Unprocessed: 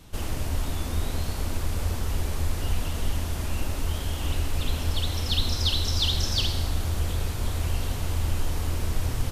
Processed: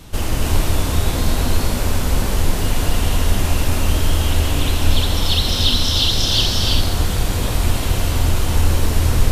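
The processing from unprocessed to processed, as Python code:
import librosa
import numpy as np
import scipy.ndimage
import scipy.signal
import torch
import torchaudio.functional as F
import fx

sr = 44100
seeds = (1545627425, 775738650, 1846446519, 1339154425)

p1 = fx.rider(x, sr, range_db=10, speed_s=0.5)
p2 = x + F.gain(torch.from_numpy(p1), -2.5).numpy()
p3 = fx.rev_gated(p2, sr, seeds[0], gate_ms=360, shape='rising', drr_db=-1.0)
y = F.gain(torch.from_numpy(p3), 2.5).numpy()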